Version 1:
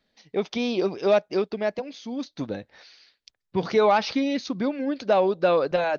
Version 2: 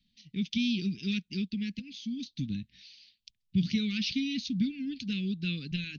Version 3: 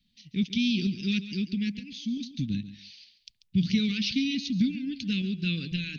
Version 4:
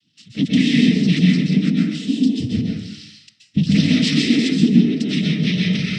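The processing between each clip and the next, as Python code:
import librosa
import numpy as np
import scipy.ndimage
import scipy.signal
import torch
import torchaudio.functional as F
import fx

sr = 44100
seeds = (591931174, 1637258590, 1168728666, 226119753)

y1 = scipy.signal.sosfilt(scipy.signal.ellip(3, 1.0, 70, [210.0, 2800.0], 'bandstop', fs=sr, output='sos'), x)
y1 = fx.high_shelf(y1, sr, hz=4900.0, db=-10.0)
y1 = y1 * librosa.db_to_amplitude(4.0)
y2 = fx.tremolo_shape(y1, sr, shape='saw_up', hz=2.3, depth_pct=35)
y2 = fx.echo_feedback(y2, sr, ms=139, feedback_pct=20, wet_db=-13.5)
y2 = y2 * librosa.db_to_amplitude(5.0)
y3 = fx.noise_vocoder(y2, sr, seeds[0], bands=12)
y3 = fx.rev_plate(y3, sr, seeds[1], rt60_s=0.72, hf_ratio=0.45, predelay_ms=115, drr_db=-2.5)
y3 = y3 * librosa.db_to_amplitude(7.0)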